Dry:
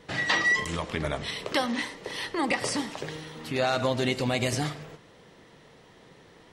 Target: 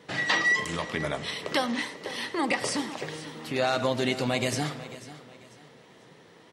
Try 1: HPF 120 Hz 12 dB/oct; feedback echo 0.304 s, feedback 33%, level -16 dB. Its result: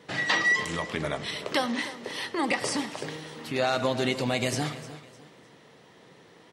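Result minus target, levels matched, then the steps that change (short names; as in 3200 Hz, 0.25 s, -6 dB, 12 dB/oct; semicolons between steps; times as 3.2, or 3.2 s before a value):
echo 0.189 s early
change: feedback echo 0.493 s, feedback 33%, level -16 dB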